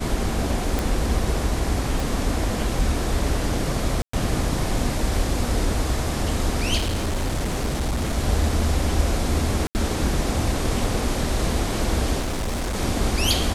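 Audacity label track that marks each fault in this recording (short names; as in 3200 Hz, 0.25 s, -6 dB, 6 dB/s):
0.790000	0.790000	pop
2.000000	2.000000	pop
4.020000	4.130000	gap 0.114 s
6.770000	8.180000	clipped -20 dBFS
9.670000	9.750000	gap 79 ms
12.190000	12.760000	clipped -22.5 dBFS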